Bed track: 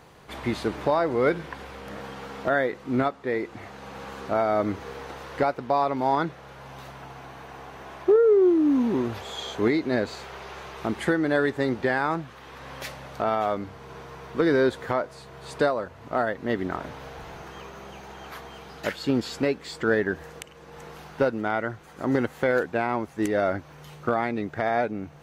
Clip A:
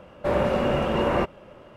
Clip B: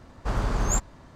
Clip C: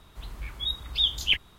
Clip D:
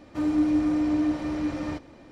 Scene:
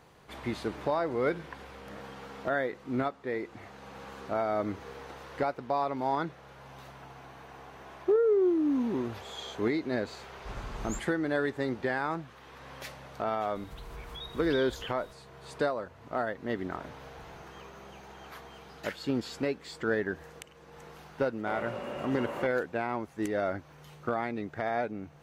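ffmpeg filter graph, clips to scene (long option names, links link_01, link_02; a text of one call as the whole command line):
ffmpeg -i bed.wav -i cue0.wav -i cue1.wav -i cue2.wav -filter_complex "[0:a]volume=-6.5dB[link_01];[3:a]acompressor=threshold=-41dB:ratio=6:attack=3.2:release=140:knee=1:detection=peak[link_02];[1:a]highpass=frequency=300:poles=1[link_03];[2:a]atrim=end=1.15,asetpts=PTS-STARTPTS,volume=-14.5dB,afade=type=in:duration=0.004:curve=hsin,afade=type=out:start_time=1.146:duration=0.004:curve=hsin,adelay=10200[link_04];[link_02]atrim=end=1.58,asetpts=PTS-STARTPTS,afade=type=in:duration=0.004:curve=hsin,afade=type=out:start_time=1.576:duration=0.004:curve=hsin,adelay=13550[link_05];[link_03]atrim=end=1.76,asetpts=PTS-STARTPTS,volume=-13dB,afade=type=in:duration=0.004:curve=hsin,afade=type=out:start_time=1.756:duration=0.004:curve=hsin,adelay=21220[link_06];[link_01][link_04][link_05][link_06]amix=inputs=4:normalize=0" out.wav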